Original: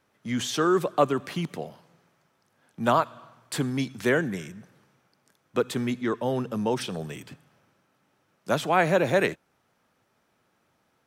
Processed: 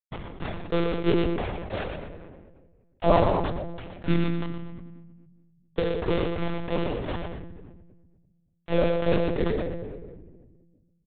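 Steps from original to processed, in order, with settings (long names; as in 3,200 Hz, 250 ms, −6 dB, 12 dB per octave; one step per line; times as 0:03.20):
reversed piece by piece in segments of 70 ms
inverse Chebyshev low-pass filter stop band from 2,800 Hz, stop band 60 dB
mains-hum notches 50/100/150/200/250/300/350 Hz
in parallel at −3 dB: upward compression, threshold −28 dBFS
on the sum: granular cloud 195 ms, grains 3 per second, spray 287 ms, pitch spread up and down by 0 semitones
bit reduction 5 bits
multi-voice chorus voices 2, 0.76 Hz, delay 24 ms, depth 1.4 ms
repeating echo 120 ms, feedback 18%, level −12 dB
on a send at −10.5 dB: convolution reverb RT60 1.5 s, pre-delay 3 ms
on the sum: one-pitch LPC vocoder at 8 kHz 170 Hz
level that may fall only so fast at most 30 dB per second
level +3.5 dB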